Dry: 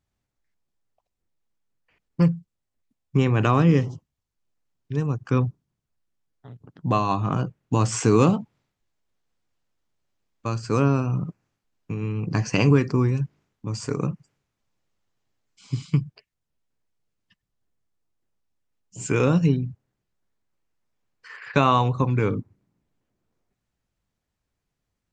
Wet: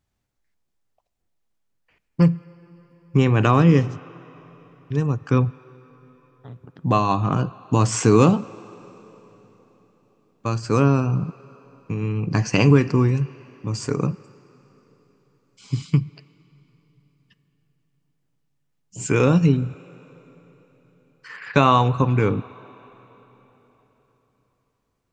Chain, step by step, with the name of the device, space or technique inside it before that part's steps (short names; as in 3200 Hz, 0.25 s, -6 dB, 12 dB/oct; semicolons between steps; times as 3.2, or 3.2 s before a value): filtered reverb send (on a send: HPF 540 Hz 6 dB/oct + LPF 4200 Hz 12 dB/oct + reverb RT60 4.0 s, pre-delay 3 ms, DRR 17 dB); on the sum: gain +3 dB